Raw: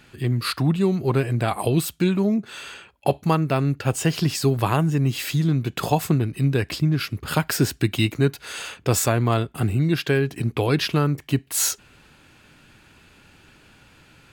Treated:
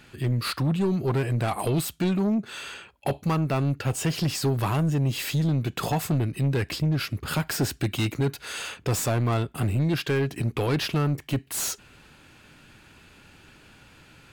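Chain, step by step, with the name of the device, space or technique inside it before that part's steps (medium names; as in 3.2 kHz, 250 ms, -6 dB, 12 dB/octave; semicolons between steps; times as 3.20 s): saturation between pre-emphasis and de-emphasis (treble shelf 2.1 kHz +8 dB; saturation -18.5 dBFS, distortion -10 dB; treble shelf 2.1 kHz -8 dB)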